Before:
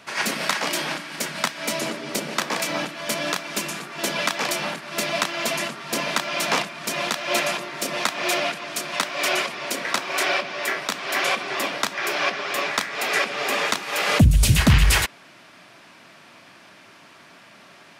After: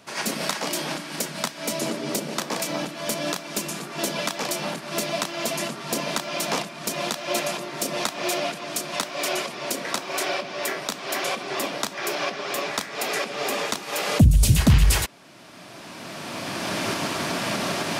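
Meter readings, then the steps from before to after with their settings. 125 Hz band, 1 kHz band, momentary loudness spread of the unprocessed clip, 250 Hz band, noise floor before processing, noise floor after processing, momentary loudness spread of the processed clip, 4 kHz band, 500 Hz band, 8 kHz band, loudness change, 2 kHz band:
0.0 dB, −2.5 dB, 10 LU, +1.0 dB, −49 dBFS, −41 dBFS, 9 LU, −2.5 dB, 0.0 dB, 0.0 dB, −2.5 dB, −5.5 dB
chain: camcorder AGC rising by 15 dB per second
parametric band 1,900 Hz −8 dB 2.1 octaves

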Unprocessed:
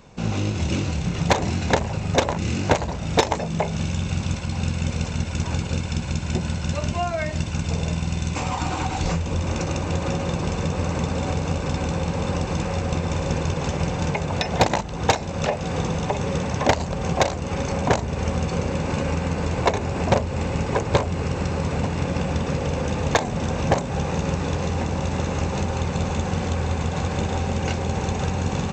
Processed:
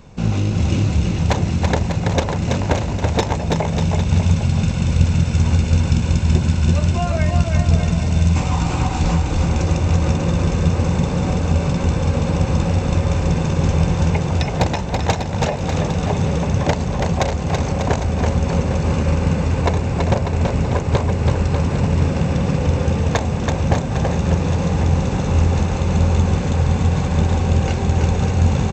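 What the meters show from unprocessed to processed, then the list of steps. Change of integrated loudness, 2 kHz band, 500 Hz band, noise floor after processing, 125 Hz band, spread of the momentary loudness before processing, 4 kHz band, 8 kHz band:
+6.0 dB, +1.0 dB, +2.0 dB, −23 dBFS, +8.0 dB, 4 LU, +1.0 dB, +1.0 dB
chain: speech leveller
low-shelf EQ 200 Hz +8.5 dB
on a send: bouncing-ball delay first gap 330 ms, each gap 0.8×, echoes 5
on the sum: level −1 dB

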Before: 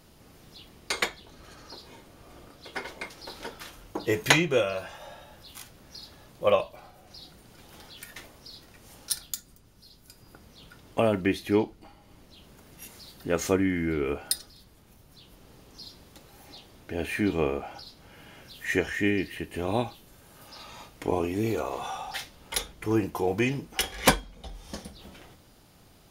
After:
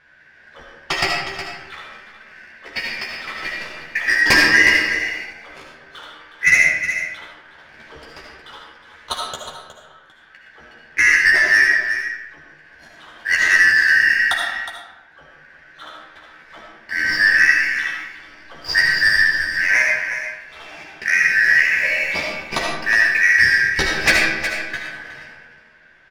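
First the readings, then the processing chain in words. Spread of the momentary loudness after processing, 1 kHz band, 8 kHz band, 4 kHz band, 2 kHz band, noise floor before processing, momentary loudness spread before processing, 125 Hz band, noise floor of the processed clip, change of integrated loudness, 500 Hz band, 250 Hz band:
18 LU, +4.5 dB, +5.5 dB, +10.5 dB, +21.5 dB, −56 dBFS, 21 LU, can't be measured, −49 dBFS, +13.0 dB, −4.5 dB, −5.0 dB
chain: band-splitting scrambler in four parts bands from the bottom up 3142
low-pass filter 3,700 Hz 12 dB per octave
leveller curve on the samples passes 1
soft clipping −16 dBFS, distortion −14 dB
double-tracking delay 13 ms −4.5 dB
single-tap delay 364 ms −10 dB
comb and all-pass reverb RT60 1 s, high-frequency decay 0.7×, pre-delay 35 ms, DRR −0.5 dB
one half of a high-frequency compander decoder only
level +6.5 dB

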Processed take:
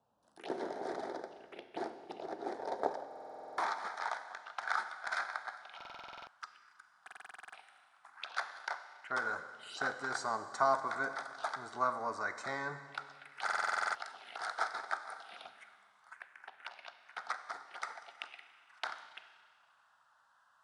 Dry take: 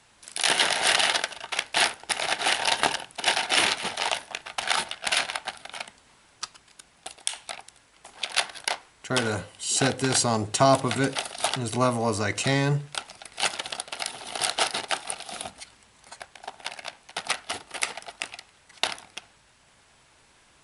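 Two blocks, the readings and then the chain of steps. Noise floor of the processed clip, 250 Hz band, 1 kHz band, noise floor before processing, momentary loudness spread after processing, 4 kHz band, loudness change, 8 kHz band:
−69 dBFS, −18.0 dB, −8.0 dB, −59 dBFS, 18 LU, −23.5 dB, −13.5 dB, −25.0 dB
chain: band-pass filter sweep 360 Hz → 1,400 Hz, 0:02.53–0:03.88
phaser swept by the level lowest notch 340 Hz, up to 2,800 Hz, full sweep at −39 dBFS
four-comb reverb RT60 1.9 s, combs from 31 ms, DRR 10 dB
buffer that repeats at 0:03.07/0:05.76/0:07.03/0:13.44, samples 2,048, times 10

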